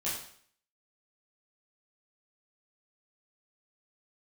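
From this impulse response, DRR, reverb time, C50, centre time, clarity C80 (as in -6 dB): -9.0 dB, 0.55 s, 3.0 dB, 47 ms, 7.0 dB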